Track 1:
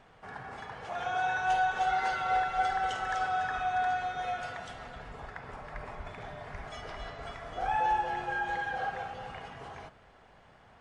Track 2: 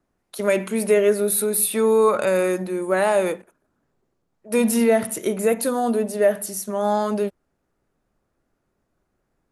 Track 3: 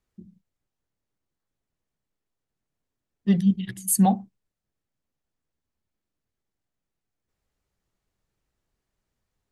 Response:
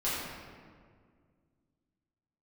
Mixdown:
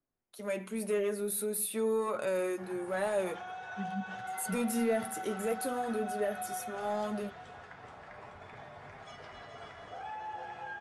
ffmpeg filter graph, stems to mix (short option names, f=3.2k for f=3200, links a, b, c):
-filter_complex "[0:a]alimiter=level_in=5dB:limit=-24dB:level=0:latency=1:release=98,volume=-5dB,highpass=100,adelay=2350,volume=-2.5dB,asplit=2[a][b];[b]volume=-6.5dB[c];[1:a]dynaudnorm=f=130:g=9:m=6dB,volume=-13dB,asplit=2[d][e];[2:a]adelay=500,volume=-10.5dB[f];[e]apad=whole_len=441665[g];[f][g]sidechaincompress=threshold=-35dB:ratio=8:attack=16:release=1290[h];[c]aecho=0:1:429|858|1287|1716|2145|2574|3003:1|0.51|0.26|0.133|0.0677|0.0345|0.0176[i];[a][d][h][i]amix=inputs=4:normalize=0,asoftclip=type=tanh:threshold=-17dB,flanger=delay=7.3:depth=3.6:regen=-45:speed=0.44:shape=triangular"